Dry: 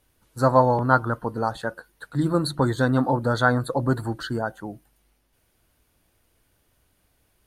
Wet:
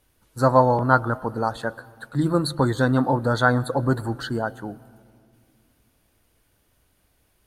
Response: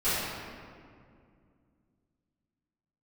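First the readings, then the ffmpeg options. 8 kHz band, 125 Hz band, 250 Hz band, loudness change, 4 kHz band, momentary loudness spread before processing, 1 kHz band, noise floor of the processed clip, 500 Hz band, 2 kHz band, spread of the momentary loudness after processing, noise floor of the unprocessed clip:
+1.0 dB, +1.0 dB, +1.0 dB, +1.0 dB, +1.0 dB, 13 LU, +1.0 dB, −66 dBFS, +1.0 dB, +1.0 dB, 13 LU, −68 dBFS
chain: -filter_complex "[0:a]asplit=2[link_01][link_02];[1:a]atrim=start_sample=2205,adelay=105[link_03];[link_02][link_03]afir=irnorm=-1:irlink=0,volume=-34dB[link_04];[link_01][link_04]amix=inputs=2:normalize=0,volume=1dB"

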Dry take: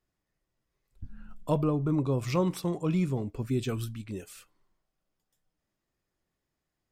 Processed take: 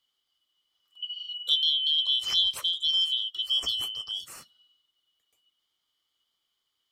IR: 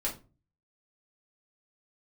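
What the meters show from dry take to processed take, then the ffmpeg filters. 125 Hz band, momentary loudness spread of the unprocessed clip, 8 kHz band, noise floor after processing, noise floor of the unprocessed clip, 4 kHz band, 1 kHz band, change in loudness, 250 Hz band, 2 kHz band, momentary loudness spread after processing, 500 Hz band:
below −30 dB, 15 LU, +4.5 dB, −80 dBFS, −85 dBFS, +27.0 dB, −12.5 dB, +5.0 dB, below −30 dB, −4.0 dB, 13 LU, below −25 dB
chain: -filter_complex "[0:a]afftfilt=real='real(if(lt(b,272),68*(eq(floor(b/68),0)*2+eq(floor(b/68),1)*3+eq(floor(b/68),2)*0+eq(floor(b/68),3)*1)+mod(b,68),b),0)':imag='imag(if(lt(b,272),68*(eq(floor(b/68),0)*2+eq(floor(b/68),1)*3+eq(floor(b/68),2)*0+eq(floor(b/68),3)*1)+mod(b,68),b),0)':win_size=2048:overlap=0.75,acrossover=split=130|3000[link_01][link_02][link_03];[link_02]acompressor=threshold=-46dB:ratio=2[link_04];[link_01][link_04][link_03]amix=inputs=3:normalize=0,equalizer=frequency=1200:width=3.9:gain=9.5,volume=4dB"

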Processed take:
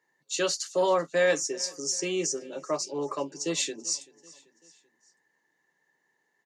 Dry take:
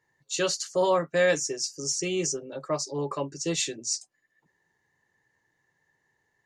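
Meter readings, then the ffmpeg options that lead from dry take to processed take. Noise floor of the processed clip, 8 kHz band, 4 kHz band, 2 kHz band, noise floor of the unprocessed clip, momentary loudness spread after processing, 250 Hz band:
−75 dBFS, −0.5 dB, −0.5 dB, −1.0 dB, −76 dBFS, 8 LU, −1.5 dB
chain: -af "highpass=frequency=190:width=0.5412,highpass=frequency=190:width=1.3066,acontrast=50,aecho=1:1:386|772|1158:0.075|0.0382|0.0195,volume=-6.5dB"

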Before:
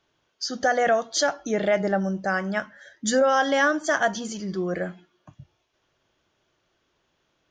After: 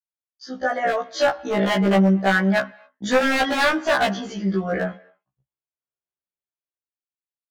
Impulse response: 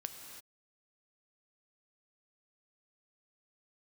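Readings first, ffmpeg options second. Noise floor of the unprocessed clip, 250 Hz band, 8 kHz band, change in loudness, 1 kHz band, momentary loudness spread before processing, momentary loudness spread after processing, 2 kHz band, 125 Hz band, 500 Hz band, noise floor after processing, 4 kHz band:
−72 dBFS, +6.5 dB, −6.5 dB, +3.5 dB, +2.0 dB, 11 LU, 10 LU, +3.0 dB, +9.0 dB, +1.5 dB, below −85 dBFS, +3.5 dB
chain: -filter_complex "[0:a]agate=range=-40dB:threshold=-37dB:ratio=16:detection=peak,dynaudnorm=framelen=210:gausssize=11:maxgain=10dB,lowpass=3100,adynamicequalizer=threshold=0.0282:dfrequency=1800:dqfactor=1.9:tfrequency=1800:tqfactor=1.9:attack=5:release=100:ratio=0.375:range=1.5:mode=cutabove:tftype=bell,aeval=exprs='0.282*(abs(mod(val(0)/0.282+3,4)-2)-1)':channel_layout=same,asplit=2[link_01][link_02];[link_02]highpass=500[link_03];[1:a]atrim=start_sample=2205,afade=type=out:start_time=0.32:duration=0.01,atrim=end_sample=14553,lowpass=2800[link_04];[link_03][link_04]afir=irnorm=-1:irlink=0,volume=-11dB[link_05];[link_01][link_05]amix=inputs=2:normalize=0,afftfilt=real='re*1.73*eq(mod(b,3),0)':imag='im*1.73*eq(mod(b,3),0)':win_size=2048:overlap=0.75"

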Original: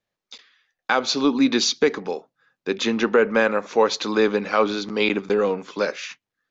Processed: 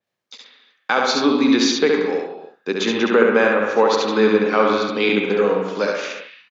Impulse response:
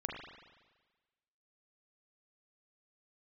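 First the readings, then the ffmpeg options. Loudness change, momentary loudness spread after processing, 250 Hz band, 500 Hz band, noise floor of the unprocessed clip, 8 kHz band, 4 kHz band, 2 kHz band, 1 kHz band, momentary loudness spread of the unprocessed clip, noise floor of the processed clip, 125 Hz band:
+3.5 dB, 11 LU, +4.0 dB, +4.0 dB, below −85 dBFS, can't be measured, +2.0 dB, +4.0 dB, +4.0 dB, 13 LU, −71 dBFS, +3.5 dB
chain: -filter_complex "[0:a]highpass=120,asplit=2[link_01][link_02];[link_02]adelay=134.1,volume=-28dB,highshelf=frequency=4000:gain=-3.02[link_03];[link_01][link_03]amix=inputs=2:normalize=0,asplit=2[link_04][link_05];[1:a]atrim=start_sample=2205,afade=type=out:start_time=0.36:duration=0.01,atrim=end_sample=16317,adelay=69[link_06];[link_05][link_06]afir=irnorm=-1:irlink=0,volume=-1.5dB[link_07];[link_04][link_07]amix=inputs=2:normalize=0,adynamicequalizer=threshold=0.0158:dfrequency=4500:dqfactor=0.7:tfrequency=4500:tqfactor=0.7:attack=5:release=100:ratio=0.375:range=2.5:mode=cutabove:tftype=highshelf,volume=1dB"

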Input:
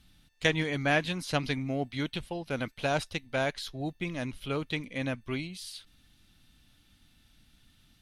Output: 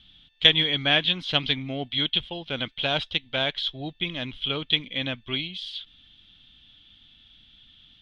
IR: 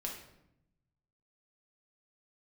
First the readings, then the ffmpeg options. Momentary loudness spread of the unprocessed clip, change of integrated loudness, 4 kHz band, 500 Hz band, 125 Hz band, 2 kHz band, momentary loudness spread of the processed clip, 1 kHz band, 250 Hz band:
9 LU, +7.5 dB, +16.5 dB, 0.0 dB, 0.0 dB, +4.5 dB, 12 LU, +0.5 dB, 0.0 dB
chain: -af "lowpass=frequency=3300:width_type=q:width=11"

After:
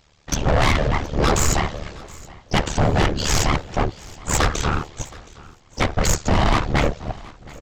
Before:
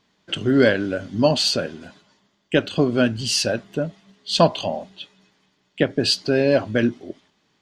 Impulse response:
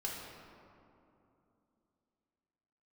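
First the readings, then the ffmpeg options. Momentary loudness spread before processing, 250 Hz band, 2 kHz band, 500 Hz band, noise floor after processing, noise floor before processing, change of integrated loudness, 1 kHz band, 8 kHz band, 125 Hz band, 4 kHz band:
15 LU, −3.5 dB, +1.5 dB, −4.5 dB, −54 dBFS, −67 dBFS, −0.5 dB, +6.5 dB, +6.0 dB, +6.0 dB, −4.0 dB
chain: -filter_complex "[0:a]apsyclip=10.5dB,aresample=16000,aeval=exprs='abs(val(0))':channel_layout=same,aresample=44100,afftfilt=real='hypot(re,im)*cos(2*PI*random(0))':imag='hypot(re,im)*sin(2*PI*random(1))':win_size=512:overlap=0.75,tremolo=f=74:d=0.857,asplit=2[link_01][link_02];[link_02]acontrast=71,volume=-2dB[link_03];[link_01][link_03]amix=inputs=2:normalize=0,asoftclip=type=tanh:threshold=-12dB,aecho=1:1:721|1442|2163:0.0841|0.032|0.0121"

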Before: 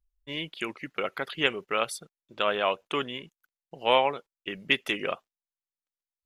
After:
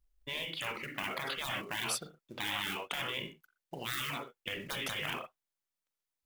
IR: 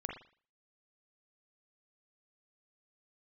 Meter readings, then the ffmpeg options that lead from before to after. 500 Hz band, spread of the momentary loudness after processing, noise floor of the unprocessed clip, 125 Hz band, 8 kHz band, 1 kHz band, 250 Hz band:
−15.5 dB, 7 LU, below −85 dBFS, −1.5 dB, +3.5 dB, −11.0 dB, −9.0 dB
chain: -filter_complex "[0:a]asplit=2[link_01][link_02];[1:a]atrim=start_sample=2205,atrim=end_sample=6174[link_03];[link_02][link_03]afir=irnorm=-1:irlink=0,volume=0dB[link_04];[link_01][link_04]amix=inputs=2:normalize=0,acrusher=bits=6:mode=log:mix=0:aa=0.000001,afftfilt=real='re*lt(hypot(re,im),0.0891)':imag='im*lt(hypot(re,im),0.0891)':win_size=1024:overlap=0.75,volume=-1.5dB"

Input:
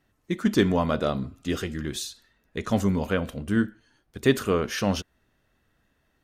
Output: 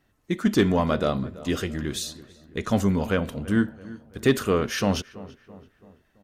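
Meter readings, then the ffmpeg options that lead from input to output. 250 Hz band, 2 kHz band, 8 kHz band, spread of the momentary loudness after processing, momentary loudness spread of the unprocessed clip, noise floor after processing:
+1.5 dB, +1.0 dB, +2.0 dB, 15 LU, 10 LU, −67 dBFS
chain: -filter_complex "[0:a]acontrast=90,asplit=2[link_01][link_02];[link_02]adelay=333,lowpass=frequency=2100:poles=1,volume=-18dB,asplit=2[link_03][link_04];[link_04]adelay=333,lowpass=frequency=2100:poles=1,volume=0.51,asplit=2[link_05][link_06];[link_06]adelay=333,lowpass=frequency=2100:poles=1,volume=0.51,asplit=2[link_07][link_08];[link_08]adelay=333,lowpass=frequency=2100:poles=1,volume=0.51[link_09];[link_03][link_05][link_07][link_09]amix=inputs=4:normalize=0[link_10];[link_01][link_10]amix=inputs=2:normalize=0,volume=-5.5dB"

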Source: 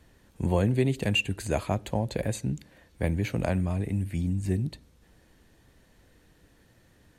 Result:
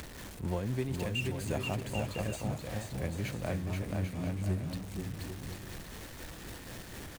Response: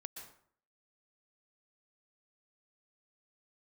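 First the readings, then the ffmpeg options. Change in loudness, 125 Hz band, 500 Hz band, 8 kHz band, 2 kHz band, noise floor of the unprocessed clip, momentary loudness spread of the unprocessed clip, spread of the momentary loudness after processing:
−8.0 dB, −6.0 dB, −6.5 dB, −2.0 dB, −6.0 dB, −61 dBFS, 8 LU, 11 LU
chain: -af "aeval=exprs='val(0)+0.5*0.0282*sgn(val(0))':channel_layout=same,tremolo=f=4:d=0.41,aecho=1:1:480|792|994.8|1127|1212:0.631|0.398|0.251|0.158|0.1,acompressor=mode=upward:threshold=-35dB:ratio=2.5,volume=-9dB"

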